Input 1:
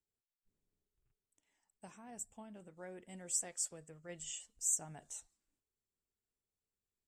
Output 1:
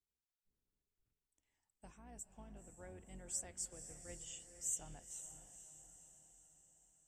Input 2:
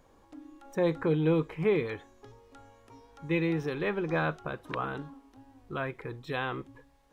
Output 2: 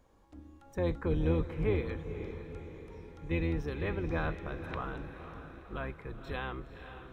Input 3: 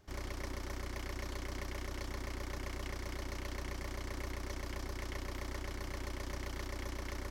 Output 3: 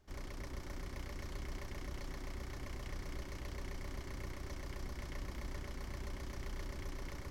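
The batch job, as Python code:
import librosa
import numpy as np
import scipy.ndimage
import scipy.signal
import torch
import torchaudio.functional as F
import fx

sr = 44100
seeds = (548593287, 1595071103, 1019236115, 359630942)

y = fx.octave_divider(x, sr, octaves=2, level_db=3.0)
y = fx.echo_diffused(y, sr, ms=503, feedback_pct=53, wet_db=-10.0)
y = y * librosa.db_to_amplitude(-6.0)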